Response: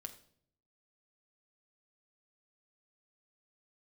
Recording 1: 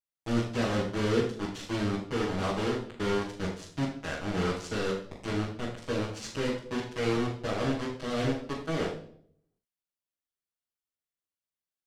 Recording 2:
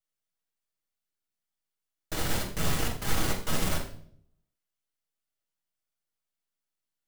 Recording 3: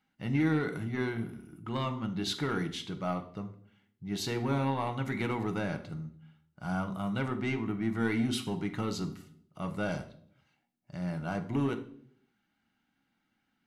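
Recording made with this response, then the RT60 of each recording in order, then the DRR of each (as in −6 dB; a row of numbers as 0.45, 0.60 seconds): 3; 0.60, 0.60, 0.60 seconds; −8.0, −2.0, 6.0 decibels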